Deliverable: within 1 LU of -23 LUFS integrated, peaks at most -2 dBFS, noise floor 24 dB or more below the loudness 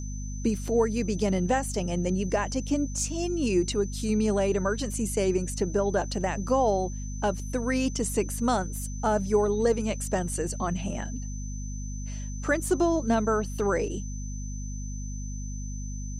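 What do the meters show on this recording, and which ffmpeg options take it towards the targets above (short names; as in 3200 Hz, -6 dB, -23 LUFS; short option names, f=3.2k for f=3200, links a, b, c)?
hum 50 Hz; harmonics up to 250 Hz; hum level -32 dBFS; steady tone 6100 Hz; tone level -44 dBFS; loudness -28.0 LUFS; peak -12.5 dBFS; loudness target -23.0 LUFS
-> -af "bandreject=f=50:t=h:w=6,bandreject=f=100:t=h:w=6,bandreject=f=150:t=h:w=6,bandreject=f=200:t=h:w=6,bandreject=f=250:t=h:w=6"
-af "bandreject=f=6.1k:w=30"
-af "volume=5dB"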